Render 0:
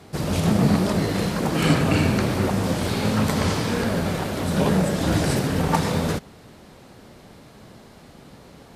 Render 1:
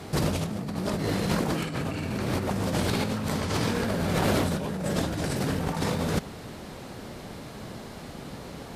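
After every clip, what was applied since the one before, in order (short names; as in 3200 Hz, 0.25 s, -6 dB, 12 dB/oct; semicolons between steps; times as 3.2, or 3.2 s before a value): negative-ratio compressor -28 dBFS, ratio -1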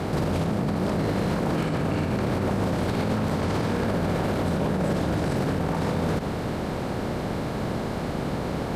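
per-bin compression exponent 0.6; high shelf 2500 Hz -11 dB; limiter -20.5 dBFS, peak gain reduction 10.5 dB; gain +4 dB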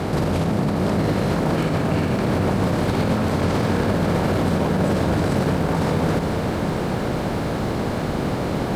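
lo-fi delay 0.453 s, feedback 80%, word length 9-bit, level -10.5 dB; gain +4 dB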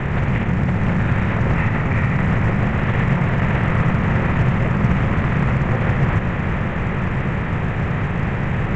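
mistuned SSB -390 Hz 190–3100 Hz; ten-band EQ 125 Hz +7 dB, 250 Hz -4 dB, 2000 Hz +9 dB; gain +2.5 dB; A-law 128 kbps 16000 Hz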